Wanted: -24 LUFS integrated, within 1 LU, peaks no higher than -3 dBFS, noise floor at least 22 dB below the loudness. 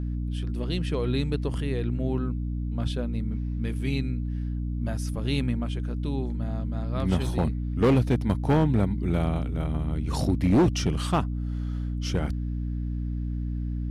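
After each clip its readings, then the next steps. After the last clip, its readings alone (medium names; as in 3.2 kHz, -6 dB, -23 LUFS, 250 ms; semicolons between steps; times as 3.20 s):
clipped samples 0.9%; clipping level -15.5 dBFS; hum 60 Hz; highest harmonic 300 Hz; hum level -27 dBFS; loudness -27.5 LUFS; peak level -15.5 dBFS; loudness target -24.0 LUFS
-> clip repair -15.5 dBFS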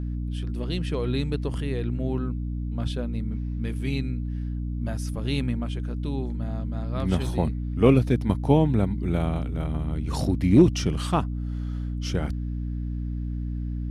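clipped samples 0.0%; hum 60 Hz; highest harmonic 300 Hz; hum level -27 dBFS
-> hum notches 60/120/180/240/300 Hz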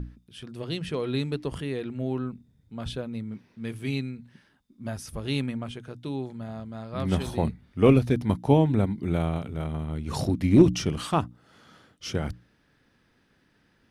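hum not found; loudness -27.0 LUFS; peak level -4.5 dBFS; loudness target -24.0 LUFS
-> trim +3 dB; peak limiter -3 dBFS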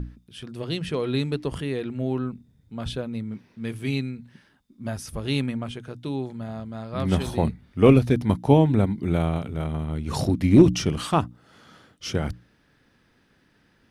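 loudness -24.5 LUFS; peak level -3.0 dBFS; noise floor -63 dBFS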